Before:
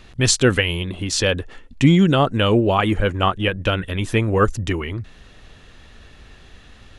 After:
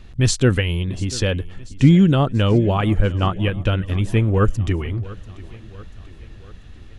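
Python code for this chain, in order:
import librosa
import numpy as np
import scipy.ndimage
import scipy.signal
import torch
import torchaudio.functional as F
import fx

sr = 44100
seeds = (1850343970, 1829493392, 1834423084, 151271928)

p1 = fx.low_shelf(x, sr, hz=250.0, db=11.5)
p2 = p1 + fx.echo_feedback(p1, sr, ms=689, feedback_pct=55, wet_db=-19.5, dry=0)
y = F.gain(torch.from_numpy(p2), -5.5).numpy()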